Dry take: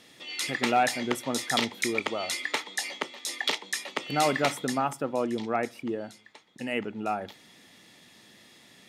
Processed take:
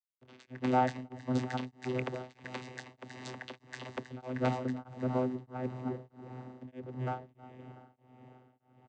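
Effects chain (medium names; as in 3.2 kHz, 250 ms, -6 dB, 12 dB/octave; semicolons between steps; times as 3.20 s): hysteresis with a dead band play -30.5 dBFS; echo that smears into a reverb 719 ms, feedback 49%, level -15 dB; vocoder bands 16, saw 127 Hz; delay 316 ms -10 dB; tremolo triangle 1.6 Hz, depth 100%; 2.44–3.97 s: three bands compressed up and down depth 70%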